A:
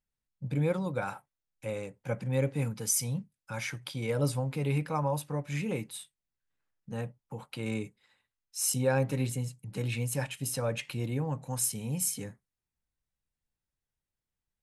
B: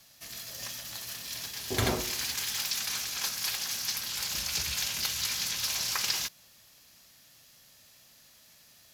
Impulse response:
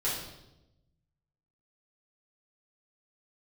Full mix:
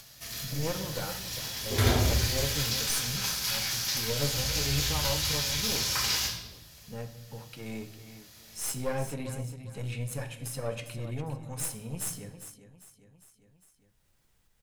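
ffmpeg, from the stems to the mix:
-filter_complex "[0:a]aeval=exprs='(tanh(12.6*val(0)+0.8)-tanh(0.8))/12.6':c=same,volume=-1.5dB,asplit=4[a][b][c][d];[b]volume=-13dB[e];[c]volume=-10dB[f];[1:a]equalizer=f=64:t=o:w=1.6:g=11,volume=-1dB,asplit=2[g][h];[h]volume=-5dB[i];[d]apad=whole_len=394187[j];[g][j]sidechaincompress=threshold=-43dB:ratio=8:attack=16:release=1140[k];[2:a]atrim=start_sample=2205[l];[e][i]amix=inputs=2:normalize=0[m];[m][l]afir=irnorm=-1:irlink=0[n];[f]aecho=0:1:403|806|1209|1612:1|0.31|0.0961|0.0298[o];[a][k][n][o]amix=inputs=4:normalize=0,acompressor=mode=upward:threshold=-48dB:ratio=2.5"

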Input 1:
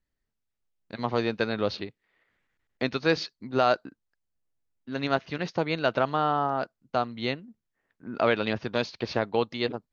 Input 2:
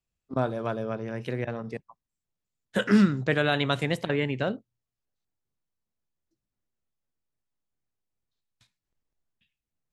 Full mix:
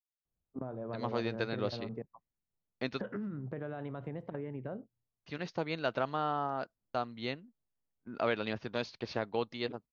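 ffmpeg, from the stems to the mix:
-filter_complex "[0:a]agate=range=-29dB:threshold=-42dB:ratio=16:detection=peak,volume=-8dB,asplit=3[a][b][c];[a]atrim=end=3.01,asetpts=PTS-STARTPTS,afade=t=out:st=3.006:d=0.004:c=hsin[d];[b]atrim=start=3.01:end=5.26,asetpts=PTS-STARTPTS,volume=0[e];[c]atrim=start=5.26,asetpts=PTS-STARTPTS,afade=t=in:d=0.004:c=hsin[f];[d][e][f]concat=n=3:v=0:a=1[g];[1:a]lowpass=1k,alimiter=limit=-18.5dB:level=0:latency=1:release=42,acompressor=threshold=-34dB:ratio=12,adelay=250,volume=-2dB[h];[g][h]amix=inputs=2:normalize=0"

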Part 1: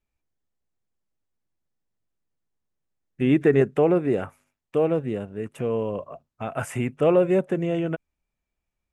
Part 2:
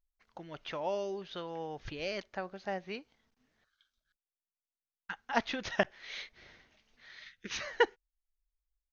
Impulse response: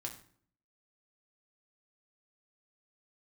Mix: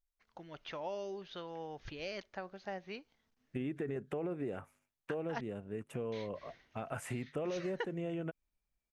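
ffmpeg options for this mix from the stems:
-filter_complex "[0:a]alimiter=limit=-15dB:level=0:latency=1:release=32,adelay=350,volume=-8dB[a];[1:a]volume=-4dB,asplit=3[b][c][d];[b]atrim=end=5.41,asetpts=PTS-STARTPTS,afade=t=out:st=5.406:d=0.004:c=hsin[e];[c]atrim=start=5.41:end=6.12,asetpts=PTS-STARTPTS,volume=0[f];[d]atrim=start=6.12,asetpts=PTS-STARTPTS,afade=t=in:d=0.004:c=hsin[g];[e][f][g]concat=n=3:v=0:a=1[h];[a][h]amix=inputs=2:normalize=0,acompressor=threshold=-36dB:ratio=4"

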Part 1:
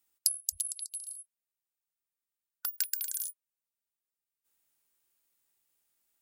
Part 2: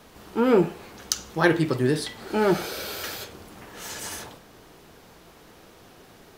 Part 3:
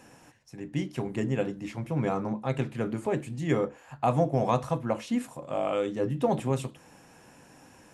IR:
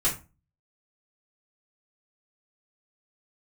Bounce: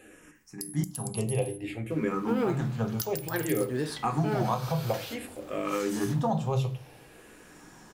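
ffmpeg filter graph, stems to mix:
-filter_complex "[0:a]adelay=350,volume=0dB,asplit=2[a][b];[b]volume=-22.5dB[c];[1:a]acrusher=bits=9:mode=log:mix=0:aa=0.000001,adelay=1900,volume=-6.5dB[d];[2:a]asplit=2[e][f];[f]afreqshift=-0.56[g];[e][g]amix=inputs=2:normalize=1,volume=1dB,asplit=2[h][i];[i]volume=-12.5dB[j];[3:a]atrim=start_sample=2205[k];[c][j]amix=inputs=2:normalize=0[l];[l][k]afir=irnorm=-1:irlink=0[m];[a][d][h][m]amix=inputs=4:normalize=0,alimiter=limit=-17.5dB:level=0:latency=1:release=239"

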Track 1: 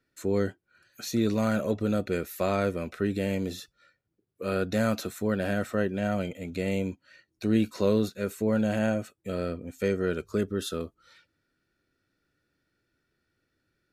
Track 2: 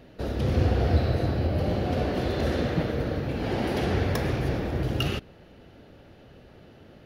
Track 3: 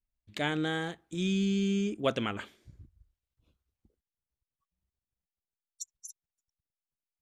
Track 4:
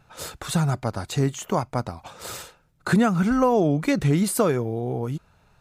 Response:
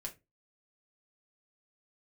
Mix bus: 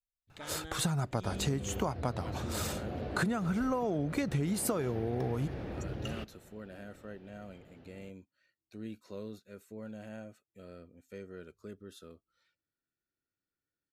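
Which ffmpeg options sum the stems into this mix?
-filter_complex "[0:a]adelay=1300,volume=-19dB[a];[1:a]equalizer=f=12k:t=o:w=1.7:g=-11.5,acompressor=threshold=-28dB:ratio=4,adelay=1050,volume=-7.5dB[b];[2:a]alimiter=limit=-20.5dB:level=0:latency=1:release=392,volume=-13.5dB[c];[3:a]adelay=300,volume=-2dB[d];[a][b][c][d]amix=inputs=4:normalize=0,acompressor=threshold=-28dB:ratio=12"

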